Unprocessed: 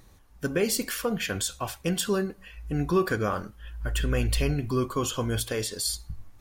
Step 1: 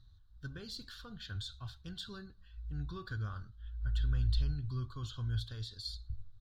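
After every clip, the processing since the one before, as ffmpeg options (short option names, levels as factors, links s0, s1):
-af "firequalizer=gain_entry='entry(120,0);entry(170,-15);entry(510,-27);entry(1500,-10);entry(2200,-30);entry(3800,0);entry(5500,-18);entry(9400,-30)':delay=0.05:min_phase=1,volume=0.668"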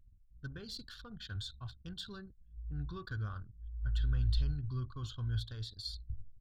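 -af "anlmdn=0.00251"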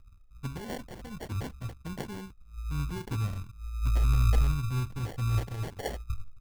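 -af "acrusher=samples=35:mix=1:aa=0.000001,volume=2.37"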